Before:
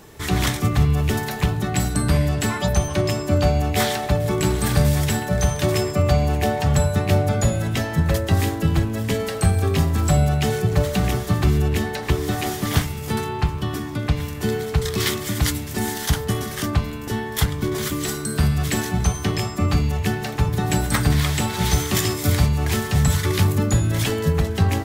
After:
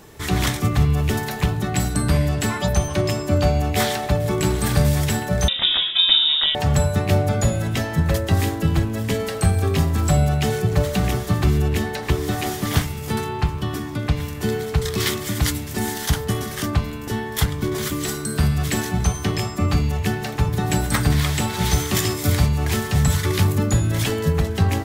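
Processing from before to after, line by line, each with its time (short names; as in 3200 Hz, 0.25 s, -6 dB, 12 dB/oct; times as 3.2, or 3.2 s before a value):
5.48–6.55 inverted band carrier 3700 Hz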